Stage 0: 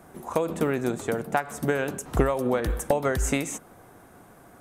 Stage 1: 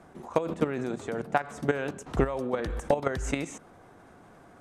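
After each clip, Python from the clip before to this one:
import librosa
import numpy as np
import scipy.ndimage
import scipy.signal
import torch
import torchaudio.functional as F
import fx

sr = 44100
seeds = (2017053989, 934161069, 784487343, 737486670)

y = scipy.signal.sosfilt(scipy.signal.butter(2, 6100.0, 'lowpass', fs=sr, output='sos'), x)
y = fx.hum_notches(y, sr, base_hz=60, count=2)
y = fx.level_steps(y, sr, step_db=11)
y = F.gain(torch.from_numpy(y), 1.5).numpy()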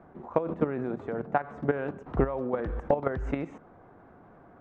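y = scipy.signal.sosfilt(scipy.signal.butter(2, 1500.0, 'lowpass', fs=sr, output='sos'), x)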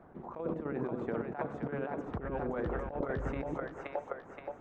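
y = fx.echo_split(x, sr, split_hz=460.0, low_ms=99, high_ms=524, feedback_pct=52, wet_db=-4)
y = fx.hpss(y, sr, part='harmonic', gain_db=-7)
y = fx.over_compress(y, sr, threshold_db=-33.0, ratio=-1.0)
y = F.gain(torch.from_numpy(y), -2.5).numpy()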